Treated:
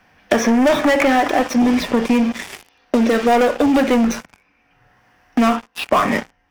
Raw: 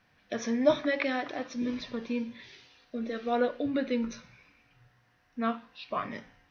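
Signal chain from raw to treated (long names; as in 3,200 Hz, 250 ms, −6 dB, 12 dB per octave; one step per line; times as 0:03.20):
leveller curve on the samples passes 5
thirty-one-band graphic EQ 125 Hz −11 dB, 800 Hz +5 dB, 4,000 Hz −8 dB
multiband upward and downward compressor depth 70%
level +1.5 dB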